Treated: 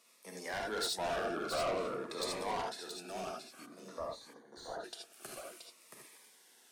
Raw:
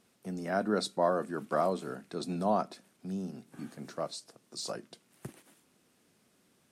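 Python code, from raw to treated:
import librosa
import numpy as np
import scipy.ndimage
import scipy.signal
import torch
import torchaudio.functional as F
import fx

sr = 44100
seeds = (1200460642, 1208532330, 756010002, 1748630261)

p1 = scipy.signal.sosfilt(scipy.signal.butter(2, 750.0, 'highpass', fs=sr, output='sos'), x)
p2 = fx.rider(p1, sr, range_db=4, speed_s=0.5)
p3 = p1 + (p2 * librosa.db_to_amplitude(-1.0))
p4 = fx.tilt_eq(p3, sr, slope=-4.0, at=(1.16, 2.1))
p5 = fx.rev_gated(p4, sr, seeds[0], gate_ms=100, shape='rising', drr_db=1.0)
p6 = 10.0 ** (-30.0 / 20.0) * np.tanh(p5 / 10.0 ** (-30.0 / 20.0))
p7 = fx.moving_average(p6, sr, points=17, at=(3.65, 4.83), fade=0.02)
p8 = p7 + fx.echo_single(p7, sr, ms=676, db=-6.5, dry=0)
y = fx.notch_cascade(p8, sr, direction='falling', hz=0.52)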